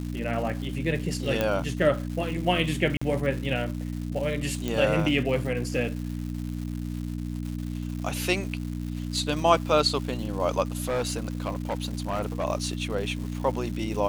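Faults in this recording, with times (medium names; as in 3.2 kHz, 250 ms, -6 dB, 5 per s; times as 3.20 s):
crackle 340 per s -35 dBFS
hum 60 Hz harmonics 5 -32 dBFS
1.41 s: pop -11 dBFS
2.97–3.02 s: dropout 45 ms
4.68 s: pop
10.87–12.44 s: clipped -23.5 dBFS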